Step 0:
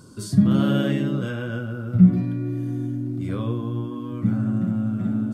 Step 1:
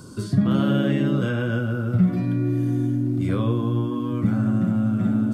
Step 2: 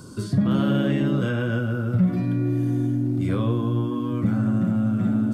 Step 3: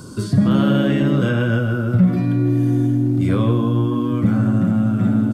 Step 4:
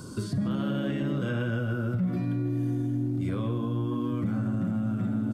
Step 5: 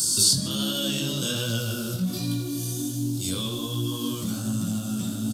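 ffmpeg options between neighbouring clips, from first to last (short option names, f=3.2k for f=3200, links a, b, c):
-filter_complex "[0:a]acrossover=split=410|3300[a][b][c];[a]acompressor=threshold=-24dB:ratio=4[d];[b]acompressor=threshold=-33dB:ratio=4[e];[c]acompressor=threshold=-54dB:ratio=4[f];[d][e][f]amix=inputs=3:normalize=0,volume=5.5dB"
-af "asoftclip=type=tanh:threshold=-10.5dB"
-af "aecho=1:1:159:0.224,volume=5.5dB"
-af "alimiter=limit=-16.5dB:level=0:latency=1:release=255,volume=-5dB"
-filter_complex "[0:a]asplit=2[a][b];[b]adelay=80,highpass=300,lowpass=3.4k,asoftclip=type=hard:threshold=-31.5dB,volume=-9dB[c];[a][c]amix=inputs=2:normalize=0,aexciter=amount=11.7:drive=9.7:freq=3.3k,flanger=delay=17.5:depth=5.3:speed=1.3,volume=2dB"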